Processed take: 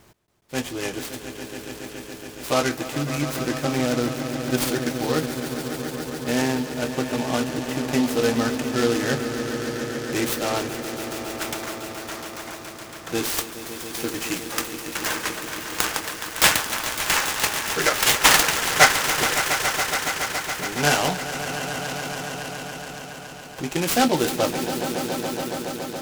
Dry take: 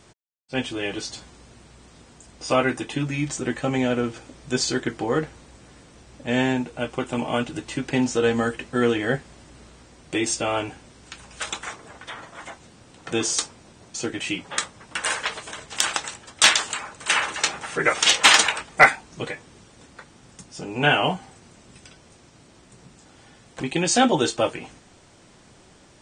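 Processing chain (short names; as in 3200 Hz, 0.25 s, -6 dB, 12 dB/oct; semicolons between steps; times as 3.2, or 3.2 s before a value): swelling echo 0.14 s, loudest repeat 5, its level -12 dB; noise-modulated delay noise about 3700 Hz, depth 0.058 ms; gain -1 dB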